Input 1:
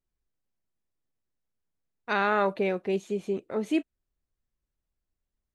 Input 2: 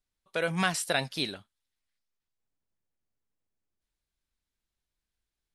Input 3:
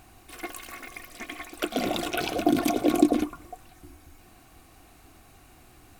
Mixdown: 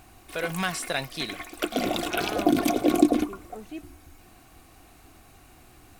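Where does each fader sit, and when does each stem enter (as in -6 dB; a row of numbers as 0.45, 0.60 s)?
-12.5, -1.0, +1.0 dB; 0.00, 0.00, 0.00 s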